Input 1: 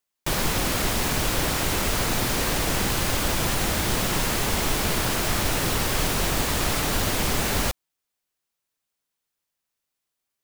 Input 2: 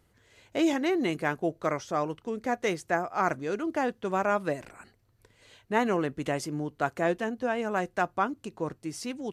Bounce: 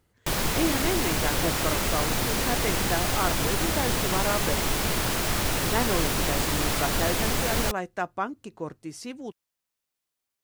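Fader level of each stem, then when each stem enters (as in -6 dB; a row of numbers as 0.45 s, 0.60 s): -2.0 dB, -2.0 dB; 0.00 s, 0.00 s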